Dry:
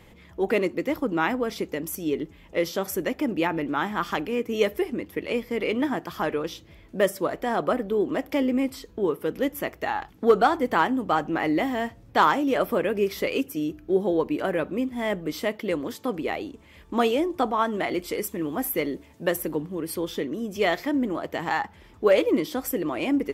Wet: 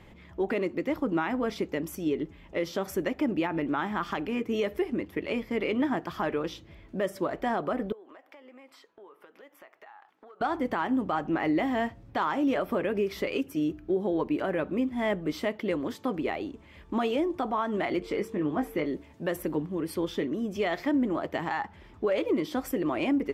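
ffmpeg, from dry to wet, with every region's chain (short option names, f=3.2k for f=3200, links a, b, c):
-filter_complex "[0:a]asettb=1/sr,asplit=3[a][b][c];[a]atrim=end=7.924[d];[b]atrim=start=7.92:end=10.41,asetpts=PTS-STARTPTS,afade=t=in:d=0.004:c=qsin,afade=t=out:st=2.486:d=0.004:c=qsin,highpass=920,highshelf=f=2.2k:g=-12,acompressor=threshold=-46dB:ratio=10:attack=3.2:release=140:knee=1:detection=peak[e];[c]atrim=start=10.406[f];[d][e]acrossfade=d=0.004:c1=hsin:c2=qsin[g];[g][f]acrossfade=d=0.004:c1=qsin:c2=hsin,asettb=1/sr,asplit=3[h][i][j];[h]atrim=end=17.994[k];[i]atrim=start=17.99:end=18.86,asetpts=PTS-STARTPTS,afade=t=in:d=0.004:c=qsin,afade=t=out:st=0.866:d=0.004:c=qsin,aemphasis=mode=reproduction:type=50fm,aeval=exprs='val(0)+0.00562*sin(2*PI*450*n/s)':c=same,asplit=2[l][m];[m]adelay=20,volume=-8.5dB[n];[l][n]amix=inputs=2:normalize=0,atrim=end_sample=38367[o];[j]atrim=start=18.856[p];[k][o]acrossfade=d=0.004:c1=hsin:c2=qsin[q];[q][p]acrossfade=d=0.004:c1=qsin:c2=hsin,lowpass=f=3.2k:p=1,bandreject=f=480:w=12,alimiter=limit=-19dB:level=0:latency=1:release=121"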